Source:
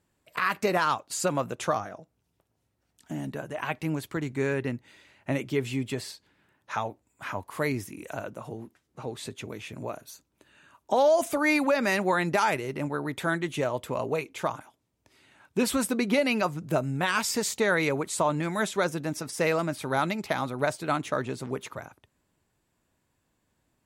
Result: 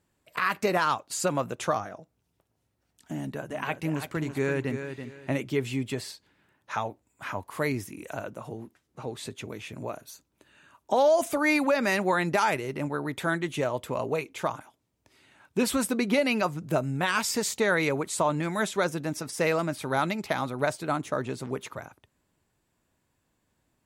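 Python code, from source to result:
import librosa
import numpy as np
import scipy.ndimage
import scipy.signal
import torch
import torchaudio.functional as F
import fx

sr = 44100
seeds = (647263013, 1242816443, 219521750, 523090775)

y = fx.echo_feedback(x, sr, ms=333, feedback_pct=26, wet_db=-8.5, at=(3.17, 5.43))
y = fx.peak_eq(y, sr, hz=2800.0, db=-6.0, octaves=1.6, at=(20.85, 21.25))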